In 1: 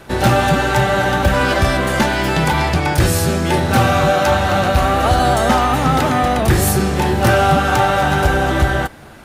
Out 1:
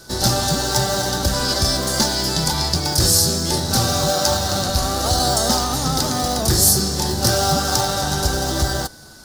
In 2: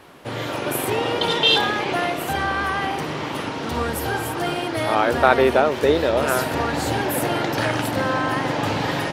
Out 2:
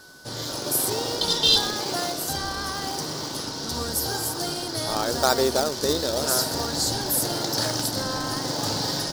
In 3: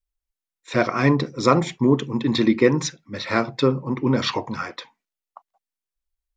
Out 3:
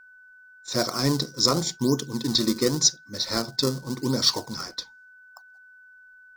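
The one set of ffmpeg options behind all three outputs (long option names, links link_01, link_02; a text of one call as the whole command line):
ffmpeg -i in.wav -filter_complex "[0:a]asplit=2[link_01][link_02];[link_02]acrusher=samples=33:mix=1:aa=0.000001:lfo=1:lforange=52.8:lforate=0.89,volume=-11dB[link_03];[link_01][link_03]amix=inputs=2:normalize=0,highshelf=frequency=3500:width_type=q:width=3:gain=12,aeval=exprs='val(0)+0.00891*sin(2*PI*1500*n/s)':channel_layout=same,volume=-7.5dB" out.wav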